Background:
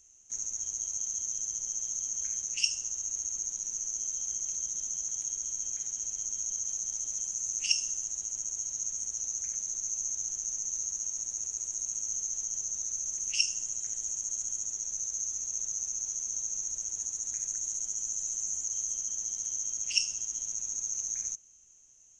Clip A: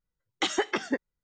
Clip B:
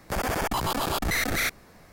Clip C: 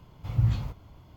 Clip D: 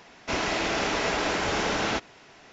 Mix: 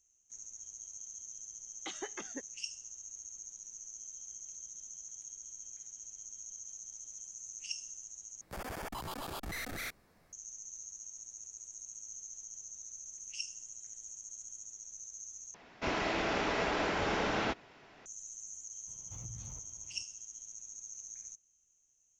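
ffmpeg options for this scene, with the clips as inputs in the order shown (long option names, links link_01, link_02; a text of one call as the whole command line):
ffmpeg -i bed.wav -i cue0.wav -i cue1.wav -i cue2.wav -i cue3.wav -filter_complex "[0:a]volume=-13dB[link_01];[4:a]aemphasis=mode=reproduction:type=50fm[link_02];[3:a]acompressor=threshold=-32dB:ratio=6:attack=3.2:release=140:knee=1:detection=peak[link_03];[link_01]asplit=3[link_04][link_05][link_06];[link_04]atrim=end=8.414[link_07];[2:a]atrim=end=1.92,asetpts=PTS-STARTPTS,volume=-14.5dB[link_08];[link_05]atrim=start=10.326:end=15.544[link_09];[link_02]atrim=end=2.52,asetpts=PTS-STARTPTS,volume=-5.5dB[link_10];[link_06]atrim=start=18.056[link_11];[1:a]atrim=end=1.23,asetpts=PTS-STARTPTS,volume=-16dB,afade=type=in:duration=0.004:curve=hsin,afade=type=out:start_time=1.226:duration=0.004:curve=hsin,adelay=1440[link_12];[link_03]atrim=end=1.16,asetpts=PTS-STARTPTS,volume=-12dB,afade=type=in:duration=0.004:curve=hsin,afade=type=out:start_time=1.156:duration=0.004:curve=hsin,adelay=18870[link_13];[link_07][link_08]acrossfade=duration=0.004:curve1=hsin:curve2=hsin[link_14];[link_14][link_09]acrossfade=duration=0.004:curve1=hsin:curve2=hsin[link_15];[link_15][link_10]acrossfade=duration=0.004:curve1=hsin:curve2=hsin[link_16];[link_16][link_11]acrossfade=duration=0.004:curve1=hsin:curve2=hsin[link_17];[link_17][link_12][link_13]amix=inputs=3:normalize=0" out.wav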